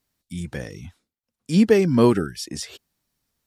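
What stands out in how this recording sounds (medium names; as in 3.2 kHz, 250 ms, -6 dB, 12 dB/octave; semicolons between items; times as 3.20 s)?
noise floor -89 dBFS; spectral tilt -6.5 dB/octave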